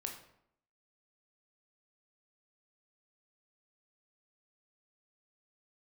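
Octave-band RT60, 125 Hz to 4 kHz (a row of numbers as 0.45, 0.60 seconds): 0.70, 0.80, 0.75, 0.70, 0.60, 0.50 seconds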